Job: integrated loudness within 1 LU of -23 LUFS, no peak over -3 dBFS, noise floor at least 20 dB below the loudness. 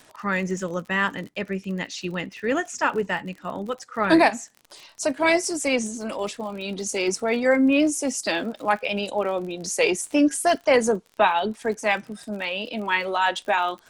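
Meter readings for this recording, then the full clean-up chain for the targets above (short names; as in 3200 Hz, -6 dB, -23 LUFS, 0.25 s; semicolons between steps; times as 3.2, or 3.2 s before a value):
ticks 44/s; loudness -24.0 LUFS; peak -5.0 dBFS; loudness target -23.0 LUFS
-> de-click; gain +1 dB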